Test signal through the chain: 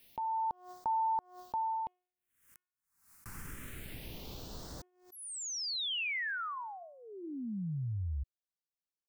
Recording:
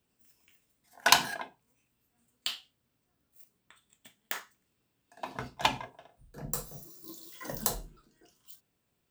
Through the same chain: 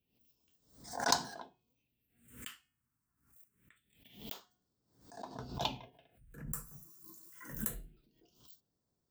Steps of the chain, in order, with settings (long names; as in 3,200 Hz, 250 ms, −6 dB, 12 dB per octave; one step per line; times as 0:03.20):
hum removal 362.3 Hz, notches 9
all-pass phaser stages 4, 0.25 Hz, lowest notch 540–2,600 Hz
background raised ahead of every attack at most 100 dB per second
level −6 dB